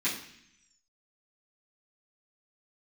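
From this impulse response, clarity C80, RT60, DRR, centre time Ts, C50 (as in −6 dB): 10.0 dB, 0.65 s, −11.5 dB, 31 ms, 6.5 dB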